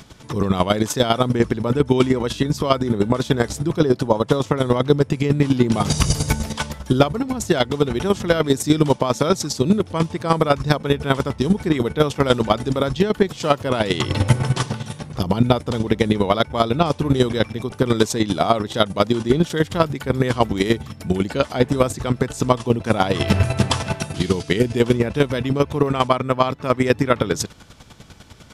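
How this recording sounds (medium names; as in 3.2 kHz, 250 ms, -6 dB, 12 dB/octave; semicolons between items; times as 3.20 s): chopped level 10 Hz, depth 65%, duty 25%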